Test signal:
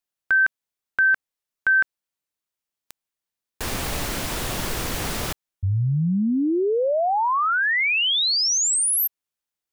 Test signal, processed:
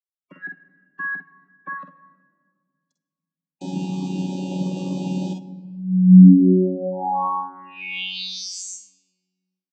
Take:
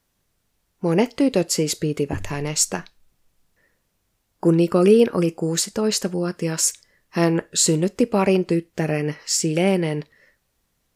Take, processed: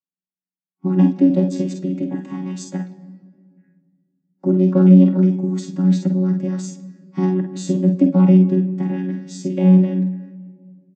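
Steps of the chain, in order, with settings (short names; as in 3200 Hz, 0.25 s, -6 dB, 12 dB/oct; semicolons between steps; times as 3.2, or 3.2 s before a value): chord vocoder bare fifth, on F#3; spectral noise reduction 30 dB; low shelf 370 Hz +9 dB; on a send: early reflections 48 ms -6.5 dB, 60 ms -12 dB; on the sum: shoebox room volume 2700 m³, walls mixed, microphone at 0.53 m; gain -3.5 dB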